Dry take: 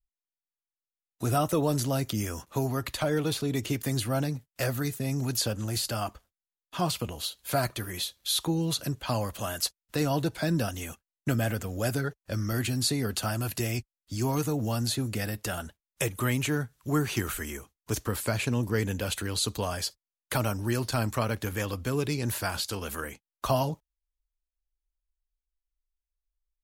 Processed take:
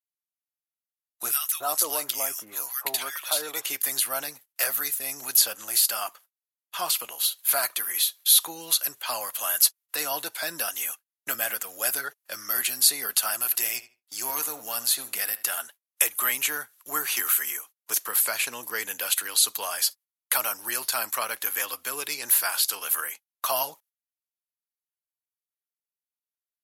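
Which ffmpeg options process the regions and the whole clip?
-filter_complex "[0:a]asettb=1/sr,asplit=3[a][b][c];[a]atrim=end=1.314[d];[b]atrim=start=1.31:end=3.65,asetpts=PTS-STARTPTS,afade=t=in:d=0.004:c=qsin,afade=t=out:st=2.336:d=0.004:c=qsin,equalizer=f=160:t=o:w=1.6:g=-3.5,acrossover=split=1500[e][f];[e]adelay=290[g];[g][f]amix=inputs=2:normalize=0,atrim=end_sample=103194[h];[c]atrim=start=3.646[i];[d][h]acrossfade=d=0.004:c1=hsin:c2=qsin[j];[j][i]acrossfade=d=0.004:c1=qsin:c2=hsin,asettb=1/sr,asplit=3[k][l][m];[k]atrim=end=13.434[n];[l]atrim=start=13.43:end=15.59,asetpts=PTS-STARTPTS,afade=t=in:d=0.004:c=qsin,afade=t=out:st=2.156:d=0.004:c=qsin,aeval=exprs='if(lt(val(0),0),0.708*val(0),val(0))':c=same,asplit=2[o][p];[p]adelay=78,lowpass=f=3.9k:p=1,volume=-14dB,asplit=2[q][r];[r]adelay=78,lowpass=f=3.9k:p=1,volume=0.23,asplit=2[s][t];[t]adelay=78,lowpass=f=3.9k:p=1,volume=0.23[u];[o][q][s][u]amix=inputs=4:normalize=0,atrim=end_sample=95256[v];[m]atrim=start=15.586[w];[n][v]acrossfade=d=0.004:c1=hsin:c2=qsin[x];[x][w]acrossfade=d=0.004:c1=qsin:c2=hsin,agate=range=-12dB:threshold=-52dB:ratio=16:detection=peak,highpass=1k,equalizer=f=12k:t=o:w=0.53:g=14,volume=5dB"

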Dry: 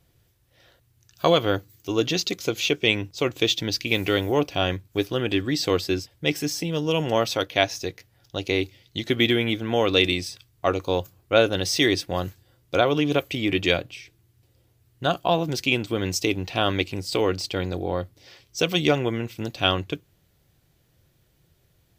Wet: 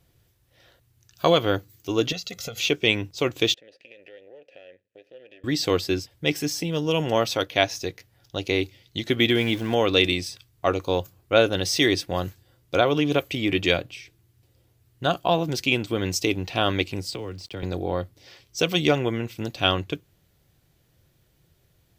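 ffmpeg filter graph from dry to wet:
-filter_complex "[0:a]asettb=1/sr,asplit=3[a][b][c];[a]atrim=end=2.124[d];[b]atrim=start=2.12:end=2.6,asetpts=PTS-STARTPTS,afade=t=in:d=0.004:c=qsin,afade=t=out:st=0.476:d=0.004:c=qsin,aecho=1:1:1.5:0.98,atrim=end_sample=21168,acompressor=threshold=-30dB:ratio=8:attack=3.2:release=140:knee=1:detection=peak[e];[c]atrim=start=2.596[f];[d][e]acrossfade=d=0.004:c1=hsin:c2=qsin[g];[g][f]acrossfade=d=0.004:c1=qsin:c2=hsin,asettb=1/sr,asplit=3[h][i][j];[h]atrim=end=3.544[k];[i]atrim=start=3.54:end=5.44,asetpts=PTS-STARTPTS,afade=t=in:d=0.004:c=qsin,afade=t=out:st=1.896:d=0.004:c=qsin,aeval=exprs='if(lt(val(0),0),0.251*val(0),val(0))':c=same,acompressor=threshold=-30dB:ratio=8:attack=3.2:release=140:knee=1:detection=peak,asplit=3[l][m][n];[l]bandpass=f=530:t=q:w=8,volume=0dB[o];[m]bandpass=f=1.84k:t=q:w=8,volume=-6dB[p];[n]bandpass=f=2.48k:t=q:w=8,volume=-9dB[q];[o][p][q]amix=inputs=3:normalize=0[r];[j]atrim=start=5.436[s];[k][r]acrossfade=d=0.004:c1=hsin:c2=qsin[t];[t][s]acrossfade=d=0.004:c1=qsin:c2=hsin,asettb=1/sr,asplit=3[u][v][w];[u]atrim=end=9.354[x];[v]atrim=start=9.35:end=9.75,asetpts=PTS-STARTPTS,afade=t=in:d=0.004:c=qsin,afade=t=out:st=0.396:d=0.004:c=qsin,aeval=exprs='val(0)+0.5*0.0158*sgn(val(0))':c=same,bandreject=f=1.3k:w=14[y];[w]atrim=start=9.746[z];[x][y]acrossfade=d=0.004:c1=hsin:c2=qsin[aa];[aa][z]acrossfade=d=0.004:c1=qsin:c2=hsin,asettb=1/sr,asplit=3[ab][ac][ad];[ab]atrim=end=17.114[ae];[ac]atrim=start=17.11:end=17.63,asetpts=PTS-STARTPTS,afade=t=in:d=0.004:c=qsin,afade=t=out:st=0.516:d=0.004:c=qsin,highshelf=f=8.9k:g=-10.5,acrossover=split=100|260[af][ag][ah];[af]acompressor=threshold=-40dB:ratio=4[ai];[ag]acompressor=threshold=-41dB:ratio=4[aj];[ah]acompressor=threshold=-37dB:ratio=4[ak];[ai][aj][ak]amix=inputs=3:normalize=0,aeval=exprs='val(0)*gte(abs(val(0)),0.00251)':c=same[al];[ad]atrim=start=17.626[am];[ae][al]acrossfade=d=0.004:c1=hsin:c2=qsin[an];[an][am]acrossfade=d=0.004:c1=qsin:c2=hsin"

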